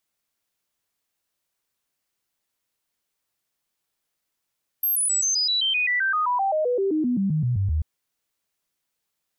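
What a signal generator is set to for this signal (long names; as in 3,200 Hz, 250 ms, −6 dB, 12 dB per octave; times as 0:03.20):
stepped sweep 12,500 Hz down, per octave 3, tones 23, 0.13 s, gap 0.00 s −19.5 dBFS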